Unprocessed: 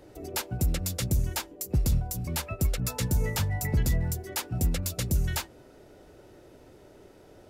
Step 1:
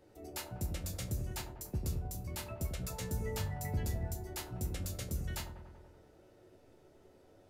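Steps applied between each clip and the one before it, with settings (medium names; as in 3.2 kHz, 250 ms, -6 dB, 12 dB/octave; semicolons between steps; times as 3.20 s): chord resonator D2 major, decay 0.23 s; feedback echo behind a low-pass 95 ms, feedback 68%, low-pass 1 kHz, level -6 dB; trim -1 dB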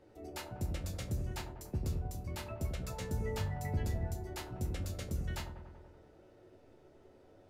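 low-pass 3.7 kHz 6 dB/octave; hum notches 60/120/180 Hz; trim +1.5 dB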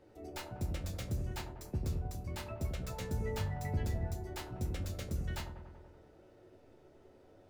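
tracing distortion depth 0.062 ms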